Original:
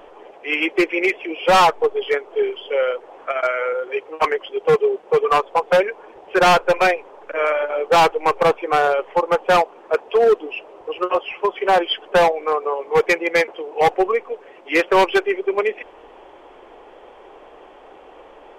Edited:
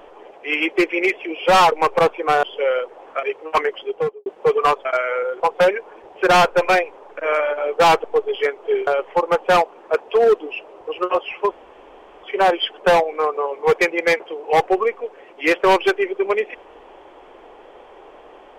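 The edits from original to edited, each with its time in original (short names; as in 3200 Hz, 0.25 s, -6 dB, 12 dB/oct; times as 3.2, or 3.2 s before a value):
1.72–2.55 swap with 8.16–8.87
3.35–3.9 move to 5.52
4.49–4.93 studio fade out
11.51 insert room tone 0.72 s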